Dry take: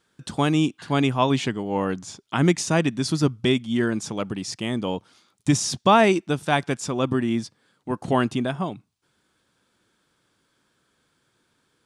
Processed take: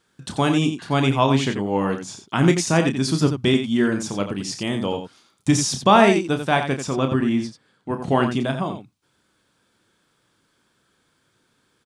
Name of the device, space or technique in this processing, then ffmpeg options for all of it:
slapback doubling: -filter_complex "[0:a]asettb=1/sr,asplit=3[a][b][c];[a]atrim=end=6.384[d];[b]atrim=start=6.38:end=8.34,asetpts=PTS-STARTPTS,afade=t=in:d=0.004:c=qsin,afade=t=out:st=1.956:d=0.004:c=qsin,highshelf=f=7.1k:g=-7.5[e];[c]atrim=start=8.336[f];[d][e]acrossfade=d=0.004:c1=hsin:c2=qsin[g];[g][f]acrossfade=d=0.004:c1=qsin:c2=hsin,asplit=3[h][i][j];[i]adelay=30,volume=-8dB[k];[j]adelay=88,volume=-8.5dB[l];[h][k][l]amix=inputs=3:normalize=0,volume=1.5dB"

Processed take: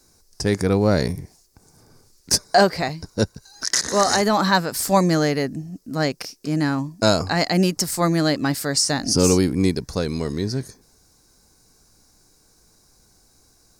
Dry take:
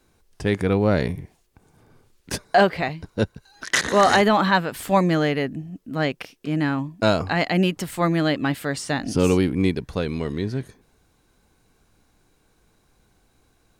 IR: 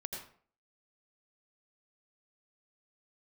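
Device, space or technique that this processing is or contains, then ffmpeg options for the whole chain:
over-bright horn tweeter: -af "highshelf=f=4k:t=q:w=3:g=8.5,alimiter=limit=-6dB:level=0:latency=1:release=388,volume=1.5dB"

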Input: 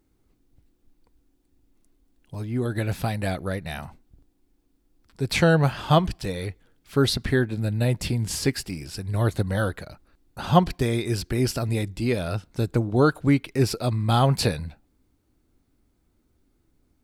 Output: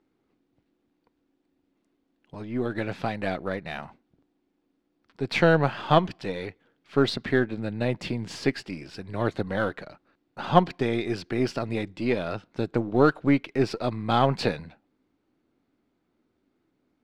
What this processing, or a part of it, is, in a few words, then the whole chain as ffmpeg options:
crystal radio: -af "highpass=200,lowpass=3.4k,aeval=exprs='if(lt(val(0),0),0.708*val(0),val(0))':c=same,volume=1.5dB"

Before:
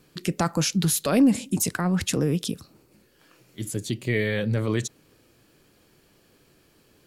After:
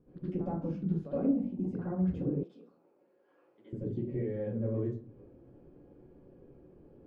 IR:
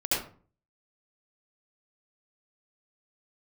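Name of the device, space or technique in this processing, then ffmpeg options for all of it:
television next door: -filter_complex "[0:a]acompressor=threshold=-36dB:ratio=4,lowpass=550[a];[1:a]atrim=start_sample=2205[b];[a][b]afir=irnorm=-1:irlink=0,asettb=1/sr,asplit=3[c][d][e];[c]atrim=end=2.434[f];[d]atrim=start=2.43:end=3.73,asetpts=PTS-STARTPTS,afade=t=in:d=0.004:c=qsin,afade=t=out:st=1.296:d=0.004:c=qsin,highpass=760[g];[e]atrim=start=3.726[h];[f][g]acrossfade=d=0.004:c1=hsin:c2=qsin[i];[i][h]acrossfade=d=0.004:c1=qsin:c2=hsin,volume=-4.5dB"

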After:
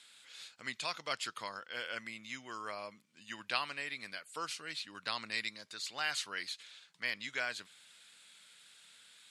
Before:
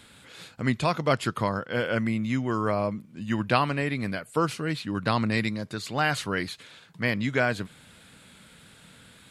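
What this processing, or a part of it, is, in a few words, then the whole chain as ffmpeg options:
piezo pickup straight into a mixer: -af "lowpass=5.8k,aderivative,volume=3dB"

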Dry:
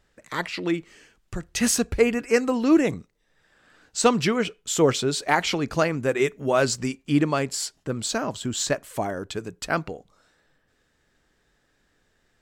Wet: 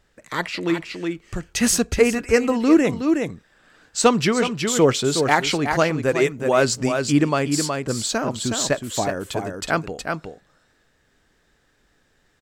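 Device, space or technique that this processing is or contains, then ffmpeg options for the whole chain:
ducked delay: -filter_complex "[0:a]asplit=3[a][b][c];[b]adelay=368,volume=-4.5dB[d];[c]apad=whole_len=563558[e];[d][e]sidechaincompress=threshold=-23dB:ratio=8:attack=16:release=370[f];[a][f]amix=inputs=2:normalize=0,volume=3dB"

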